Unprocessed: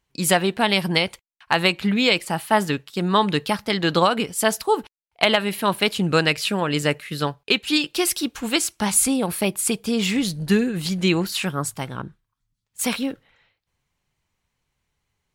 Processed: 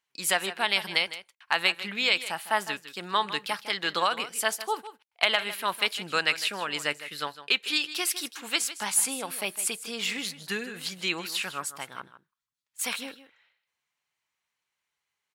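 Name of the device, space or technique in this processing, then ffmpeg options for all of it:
filter by subtraction: -filter_complex "[0:a]aecho=1:1:156:0.2,asplit=2[a][b];[b]lowpass=1.6k,volume=-1[c];[a][c]amix=inputs=2:normalize=0,volume=-5.5dB"

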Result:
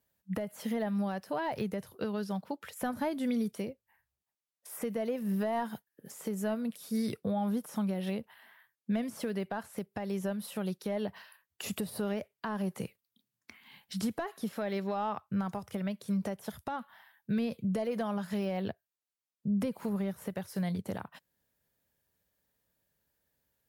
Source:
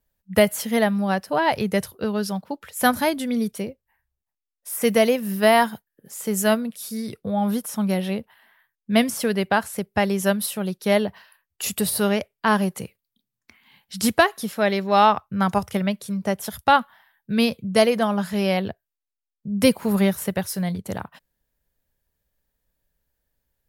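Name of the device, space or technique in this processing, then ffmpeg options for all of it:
podcast mastering chain: -af "highpass=99,deesser=0.95,acompressor=threshold=-25dB:ratio=4,alimiter=limit=-23.5dB:level=0:latency=1:release=383" -ar 48000 -c:a libmp3lame -b:a 96k

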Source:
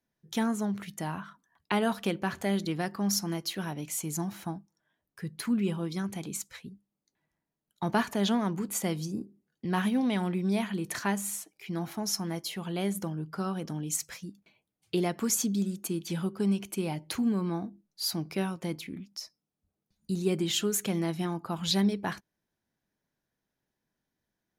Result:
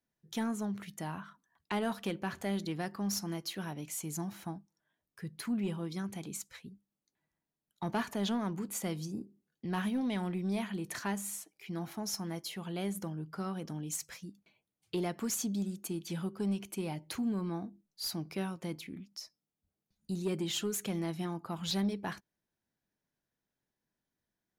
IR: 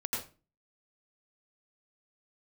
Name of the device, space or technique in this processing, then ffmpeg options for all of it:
saturation between pre-emphasis and de-emphasis: -af "highshelf=f=5.9k:g=6.5,asoftclip=type=tanh:threshold=-20dB,highshelf=f=5.9k:g=-6.5,volume=-4.5dB"

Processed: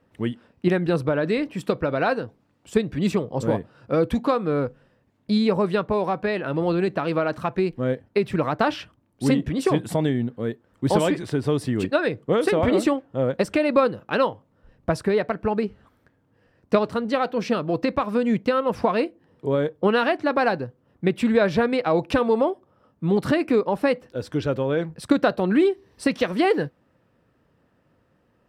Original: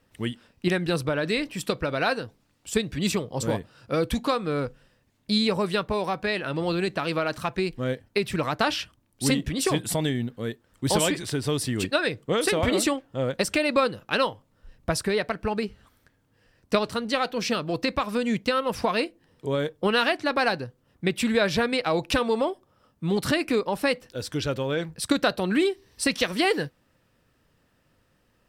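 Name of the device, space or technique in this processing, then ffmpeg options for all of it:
through cloth: -af "highpass=f=120:p=1,highshelf=f=2.3k:g=-17,volume=5.5dB"

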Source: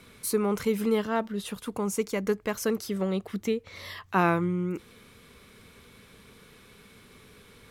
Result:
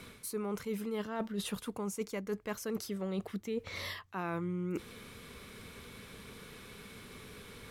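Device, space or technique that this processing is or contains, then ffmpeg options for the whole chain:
compression on the reversed sound: -af "areverse,acompressor=threshold=-36dB:ratio=16,areverse,volume=3dB"

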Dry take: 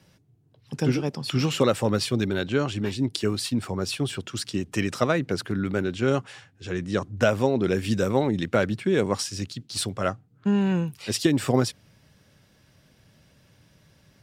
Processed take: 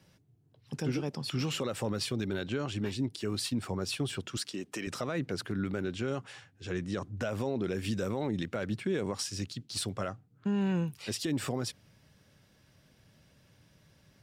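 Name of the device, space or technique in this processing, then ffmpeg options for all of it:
stacked limiters: -filter_complex "[0:a]alimiter=limit=-13.5dB:level=0:latency=1:release=65,alimiter=limit=-18.5dB:level=0:latency=1:release=91,asettb=1/sr,asplit=3[a][b][c];[a]atrim=end=4.374[d];[b]atrim=start=4.37:end=4.87,asetpts=PTS-STARTPTS,afade=t=in:d=0.004:c=qsin,afade=t=out:st=0.496:d=0.004:c=qsin,highpass=260[e];[c]atrim=start=4.866[f];[d][e]acrossfade=d=0.004:c1=hsin:c2=qsin[g];[g][f]acrossfade=d=0.004:c1=qsin:c2=hsin,volume=-4.5dB"

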